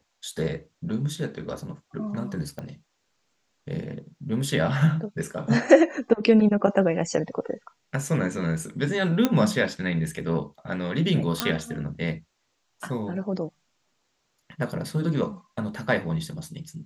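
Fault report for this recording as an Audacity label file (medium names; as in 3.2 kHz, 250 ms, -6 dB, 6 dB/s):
2.590000	2.590000	pop -23 dBFS
9.250000	9.250000	pop -7 dBFS
11.400000	11.400000	pop -5 dBFS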